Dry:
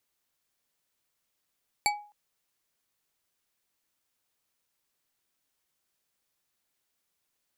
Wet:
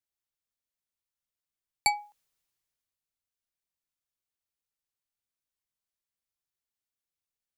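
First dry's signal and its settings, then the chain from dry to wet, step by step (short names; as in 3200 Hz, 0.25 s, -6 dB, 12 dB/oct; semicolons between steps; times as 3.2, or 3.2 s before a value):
glass hit bar, length 0.26 s, lowest mode 830 Hz, decay 0.41 s, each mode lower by 1 dB, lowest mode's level -22 dB
three-band expander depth 40%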